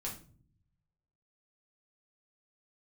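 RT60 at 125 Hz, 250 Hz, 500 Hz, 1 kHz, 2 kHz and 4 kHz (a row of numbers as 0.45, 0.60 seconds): 1.4, 1.0, 0.55, 0.35, 0.35, 0.30 seconds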